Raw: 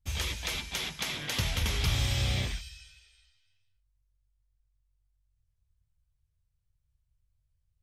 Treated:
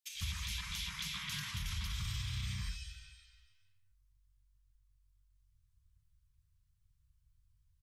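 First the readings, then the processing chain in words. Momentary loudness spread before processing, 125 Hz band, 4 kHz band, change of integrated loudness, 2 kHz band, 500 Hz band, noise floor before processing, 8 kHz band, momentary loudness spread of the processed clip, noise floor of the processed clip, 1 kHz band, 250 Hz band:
9 LU, −9.0 dB, −7.5 dB, −9.0 dB, −8.5 dB, below −40 dB, −77 dBFS, −7.5 dB, 8 LU, −74 dBFS, −10.5 dB, −10.5 dB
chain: Chebyshev band-stop filter 200–1,000 Hz, order 4
brickwall limiter −27.5 dBFS, peak gain reduction 11 dB
downward compressor 2.5 to 1, threshold −42 dBFS, peak gain reduction 7 dB
multiband delay without the direct sound highs, lows 150 ms, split 2,200 Hz
level +3.5 dB

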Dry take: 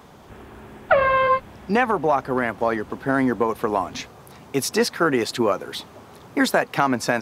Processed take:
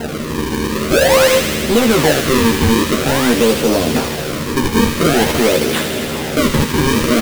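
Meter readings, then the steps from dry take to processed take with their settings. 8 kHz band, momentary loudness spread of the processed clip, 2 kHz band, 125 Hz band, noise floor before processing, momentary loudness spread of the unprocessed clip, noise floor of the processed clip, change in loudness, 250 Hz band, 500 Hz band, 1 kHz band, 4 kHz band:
+13.5 dB, 8 LU, +6.0 dB, +14.5 dB, −46 dBFS, 10 LU, −22 dBFS, +7.5 dB, +10.5 dB, +8.0 dB, +2.0 dB, +14.0 dB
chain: compressor on every frequency bin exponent 0.6
high-shelf EQ 11,000 Hz −10 dB
harmonic and percussive parts rebalanced harmonic +4 dB
flat-topped bell 1,200 Hz −16 dB
in parallel at +2.5 dB: brickwall limiter −12.5 dBFS, peak gain reduction 8 dB
on the sum: sample-and-hold swept by an LFO 37×, swing 160% 0.48 Hz
hard clipping −10 dBFS, distortion −11 dB
double-tracking delay 13 ms −3.5 dB
delay with a high-pass on its return 79 ms, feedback 83%, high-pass 1,800 Hz, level −5 dB

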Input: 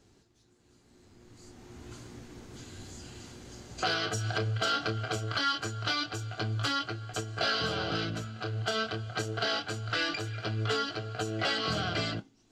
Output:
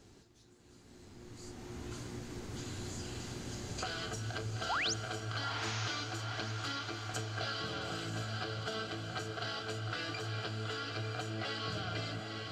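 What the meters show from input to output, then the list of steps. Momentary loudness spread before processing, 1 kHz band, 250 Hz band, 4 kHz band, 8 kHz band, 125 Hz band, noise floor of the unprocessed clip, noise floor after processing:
18 LU, −6.5 dB, −5.5 dB, −6.5 dB, −1.5 dB, −5.0 dB, −65 dBFS, −60 dBFS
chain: downward compressor 6 to 1, threshold −42 dBFS, peak gain reduction 15.5 dB
sound drawn into the spectrogram rise, 0:04.69–0:04.94, 630–7,300 Hz −38 dBFS
feedback delay with all-pass diffusion 905 ms, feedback 49%, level −4 dB
level +3.5 dB

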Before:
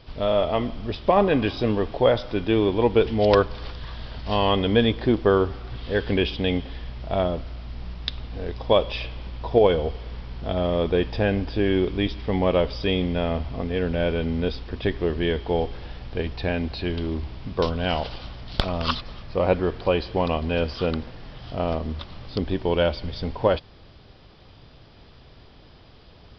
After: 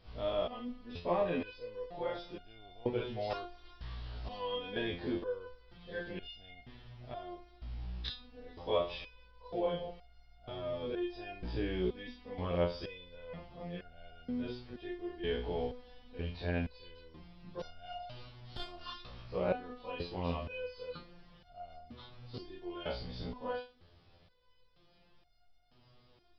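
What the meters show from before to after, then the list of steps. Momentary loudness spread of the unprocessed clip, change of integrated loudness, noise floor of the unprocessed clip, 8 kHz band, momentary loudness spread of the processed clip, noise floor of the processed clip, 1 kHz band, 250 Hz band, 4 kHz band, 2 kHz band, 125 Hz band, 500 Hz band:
14 LU, −15.5 dB, −49 dBFS, can't be measured, 17 LU, −65 dBFS, −15.0 dB, −16.5 dB, −15.0 dB, −15.0 dB, −16.5 dB, −15.5 dB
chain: every bin's largest magnitude spread in time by 60 ms
step-sequenced resonator 2.1 Hz 61–710 Hz
level −8 dB

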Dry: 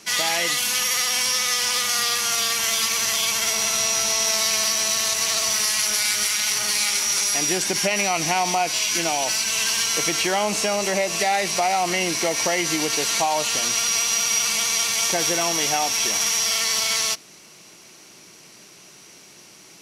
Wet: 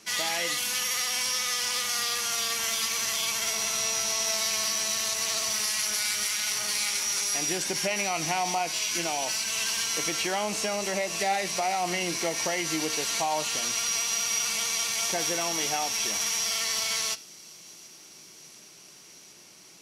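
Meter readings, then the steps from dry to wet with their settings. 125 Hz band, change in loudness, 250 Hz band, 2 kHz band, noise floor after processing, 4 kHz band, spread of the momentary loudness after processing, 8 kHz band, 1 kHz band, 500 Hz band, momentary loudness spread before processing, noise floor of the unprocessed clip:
−6.0 dB, −6.5 dB, −6.0 dB, −6.5 dB, −51 dBFS, −6.5 dB, 2 LU, −6.5 dB, −6.5 dB, −6.5 dB, 2 LU, −47 dBFS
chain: flanger 0.19 Hz, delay 9 ms, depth 4.2 ms, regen +82%
delay with a high-pass on its return 728 ms, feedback 76%, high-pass 4,100 Hz, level −22 dB
level −2 dB

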